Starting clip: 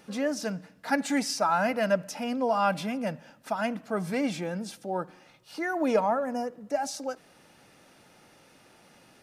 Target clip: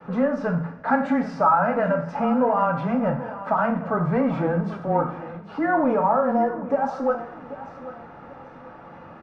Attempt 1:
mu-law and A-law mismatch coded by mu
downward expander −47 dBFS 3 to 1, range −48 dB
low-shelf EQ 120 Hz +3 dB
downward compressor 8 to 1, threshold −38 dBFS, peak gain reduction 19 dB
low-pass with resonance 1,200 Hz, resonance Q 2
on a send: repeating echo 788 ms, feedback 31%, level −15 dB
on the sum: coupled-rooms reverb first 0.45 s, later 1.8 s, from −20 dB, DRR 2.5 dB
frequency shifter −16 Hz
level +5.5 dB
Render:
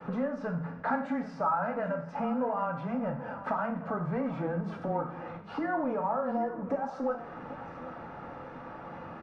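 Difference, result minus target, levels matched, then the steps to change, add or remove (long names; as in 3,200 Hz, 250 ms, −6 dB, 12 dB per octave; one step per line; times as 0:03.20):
downward compressor: peak gain reduction +10.5 dB
change: downward compressor 8 to 1, threshold −26 dBFS, peak gain reduction 8.5 dB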